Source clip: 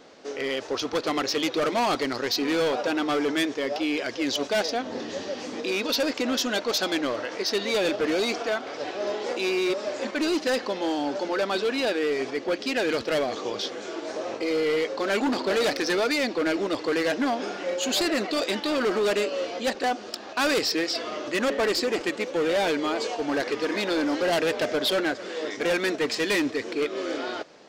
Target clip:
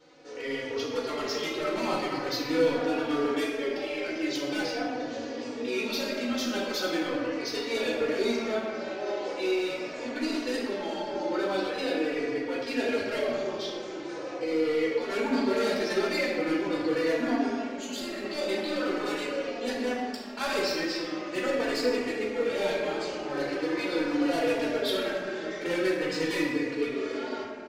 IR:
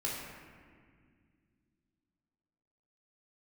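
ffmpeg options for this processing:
-filter_complex "[0:a]asettb=1/sr,asplit=3[link_01][link_02][link_03];[link_01]atrim=end=17.494[link_04];[link_02]atrim=start=17.49:end=18.24,asetpts=PTS-STARTPTS,afade=type=in:duration=0.004:curve=qsin,afade=type=out:start_time=0.746:duration=0.004:curve=qsin,acompressor=threshold=-29dB:ratio=6[link_05];[link_03]atrim=start=18.236[link_06];[link_04][link_05]acrossfade=duration=0.004:curve1=hsin:curve2=qsin[link_07];[link_07][link_06]acrossfade=duration=0.004:curve1=qsin:curve2=hsin[link_08];[1:a]atrim=start_sample=2205[link_09];[link_08][link_09]afir=irnorm=-1:irlink=0,asplit=2[link_10][link_11];[link_11]adelay=3.5,afreqshift=-0.42[link_12];[link_10][link_12]amix=inputs=2:normalize=1,volume=-5dB"

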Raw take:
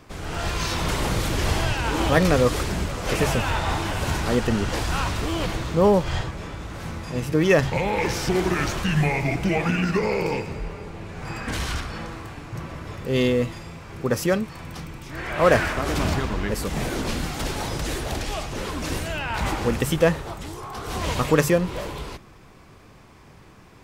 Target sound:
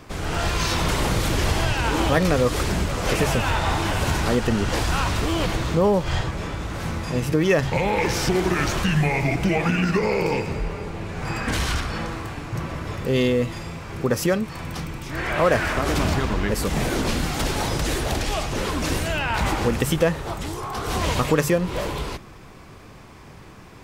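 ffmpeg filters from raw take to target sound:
ffmpeg -i in.wav -af "acompressor=threshold=-25dB:ratio=2,volume=5dB" out.wav

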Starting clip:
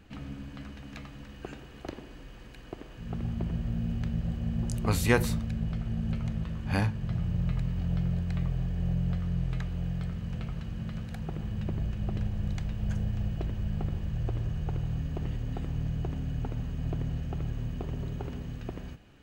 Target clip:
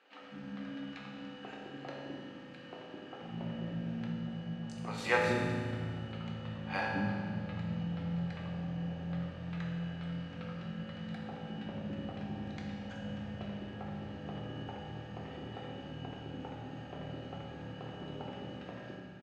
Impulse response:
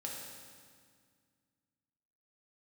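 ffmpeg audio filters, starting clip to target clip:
-filter_complex "[0:a]asettb=1/sr,asplit=3[link_01][link_02][link_03];[link_01]atrim=end=4.074[link_04];[link_02]atrim=start=4.07:end=4.98,asetpts=PTS-STARTPTS,afade=type=in:duration=0.004:curve=qsin,afade=type=out:start_time=0.906:duration=0.004:curve=qsin,acompressor=threshold=-29dB:ratio=6[link_05];[link_03]atrim=start=4.976[link_06];[link_04][link_05]acrossfade=duration=0.004:curve1=hsin:curve2=qsin[link_07];[link_07][link_06]acrossfade=duration=0.004:curve1=qsin:curve2=hsin,highpass=230,lowpass=4000,acrossover=split=390[link_08][link_09];[link_08]adelay=210[link_10];[link_10][link_09]amix=inputs=2:normalize=0[link_11];[1:a]atrim=start_sample=2205[link_12];[link_11][link_12]afir=irnorm=-1:irlink=0,volume=1dB"

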